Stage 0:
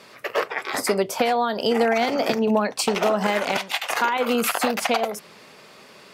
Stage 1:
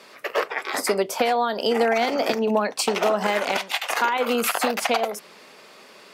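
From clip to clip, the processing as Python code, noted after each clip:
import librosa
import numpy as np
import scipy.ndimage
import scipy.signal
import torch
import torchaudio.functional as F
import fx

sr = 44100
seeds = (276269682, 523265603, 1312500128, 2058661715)

y = scipy.signal.sosfilt(scipy.signal.butter(2, 230.0, 'highpass', fs=sr, output='sos'), x)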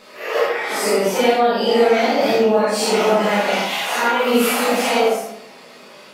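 y = fx.phase_scramble(x, sr, seeds[0], window_ms=200)
y = fx.room_shoebox(y, sr, seeds[1], volume_m3=150.0, walls='mixed', distance_m=1.4)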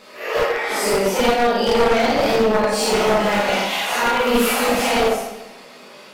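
y = np.minimum(x, 2.0 * 10.0 ** (-13.5 / 20.0) - x)
y = fx.echo_feedback(y, sr, ms=144, feedback_pct=41, wet_db=-14.5)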